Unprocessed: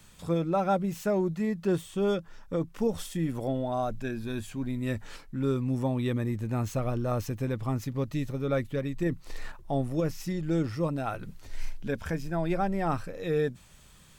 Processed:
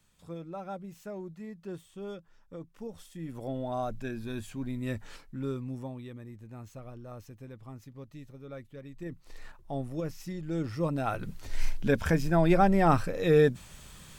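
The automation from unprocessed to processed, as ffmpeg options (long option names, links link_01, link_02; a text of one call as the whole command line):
ffmpeg -i in.wav -af "volume=18.5dB,afade=type=in:start_time=3.11:duration=0.61:silence=0.298538,afade=type=out:start_time=5.06:duration=1.03:silence=0.237137,afade=type=in:start_time=8.74:duration=1.03:silence=0.334965,afade=type=in:start_time=10.51:duration=1.24:silence=0.251189" out.wav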